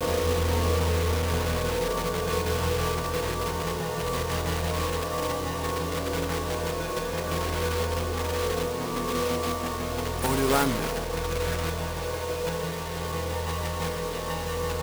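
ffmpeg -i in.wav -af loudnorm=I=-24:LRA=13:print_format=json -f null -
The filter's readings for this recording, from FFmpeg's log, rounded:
"input_i" : "-28.4",
"input_tp" : "-8.4",
"input_lra" : "3.3",
"input_thresh" : "-38.4",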